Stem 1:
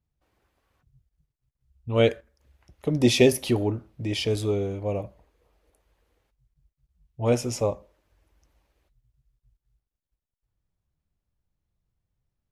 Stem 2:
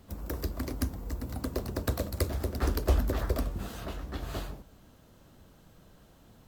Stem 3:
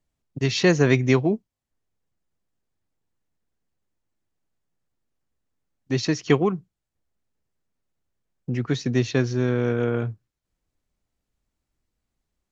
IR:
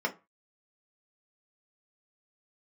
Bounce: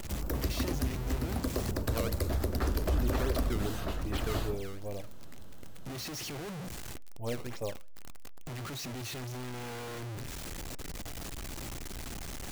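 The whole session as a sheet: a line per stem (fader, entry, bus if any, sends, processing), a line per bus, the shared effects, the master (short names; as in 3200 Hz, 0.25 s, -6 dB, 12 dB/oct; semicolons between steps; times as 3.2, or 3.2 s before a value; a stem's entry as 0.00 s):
-12.0 dB, 0.00 s, no send, limiter -14 dBFS, peak gain reduction 9.5 dB; decimation with a swept rate 15×, swing 160% 2.6 Hz
+2.5 dB, 0.00 s, no send, dry
-12.0 dB, 0.00 s, send -23.5 dB, infinite clipping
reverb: on, RT60 0.30 s, pre-delay 3 ms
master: limiter -20.5 dBFS, peak gain reduction 10 dB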